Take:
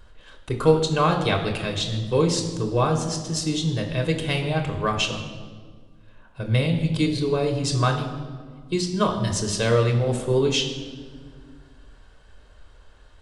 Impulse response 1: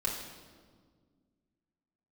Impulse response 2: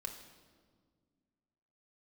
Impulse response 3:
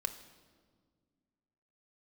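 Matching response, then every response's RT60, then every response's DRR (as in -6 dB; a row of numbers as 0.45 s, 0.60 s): 2; 1.7 s, 1.7 s, 1.7 s; -4.5 dB, 2.5 dB, 7.5 dB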